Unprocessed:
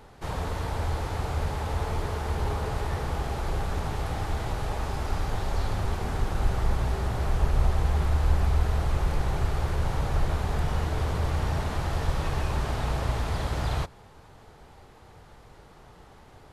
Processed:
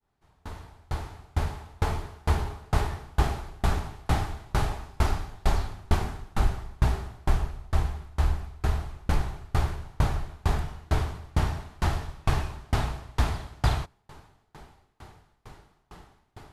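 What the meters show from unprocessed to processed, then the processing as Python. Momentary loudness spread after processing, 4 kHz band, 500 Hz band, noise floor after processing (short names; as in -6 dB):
5 LU, -0.5 dB, -3.5 dB, -68 dBFS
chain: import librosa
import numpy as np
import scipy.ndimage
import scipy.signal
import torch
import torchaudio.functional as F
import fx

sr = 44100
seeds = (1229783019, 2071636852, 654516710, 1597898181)

y = fx.fade_in_head(x, sr, length_s=2.79)
y = fx.peak_eq(y, sr, hz=510.0, db=-10.0, octaves=0.25)
y = fx.rider(y, sr, range_db=3, speed_s=0.5)
y = fx.tremolo_decay(y, sr, direction='decaying', hz=2.2, depth_db=34)
y = F.gain(torch.from_numpy(y), 8.5).numpy()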